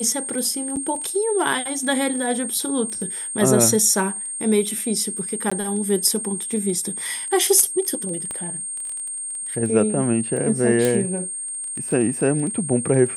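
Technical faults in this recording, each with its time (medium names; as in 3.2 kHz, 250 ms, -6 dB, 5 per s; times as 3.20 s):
crackle 12 per s -28 dBFS
whine 8.6 kHz -27 dBFS
0.76–0.77 s: dropout 7 ms
5.50–5.51 s: dropout 15 ms
8.31 s: pop -16 dBFS
10.85 s: pop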